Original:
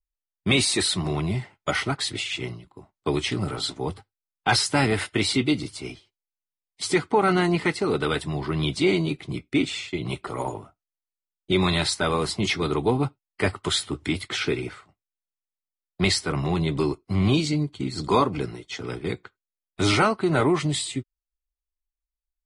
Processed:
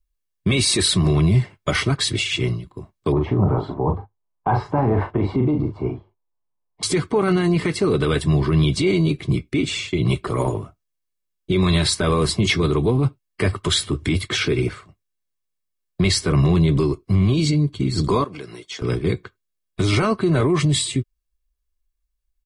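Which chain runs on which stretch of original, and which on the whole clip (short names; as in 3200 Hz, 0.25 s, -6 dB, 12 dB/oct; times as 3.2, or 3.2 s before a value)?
3.12–6.83 synth low-pass 880 Hz, resonance Q 4.4 + doubler 40 ms -8 dB
18.24–18.82 compressor 3:1, threshold -33 dBFS + HPF 760 Hz 6 dB/oct
whole clip: resonant low shelf 420 Hz +6.5 dB, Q 1.5; limiter -14.5 dBFS; comb 1.8 ms, depth 45%; gain +5 dB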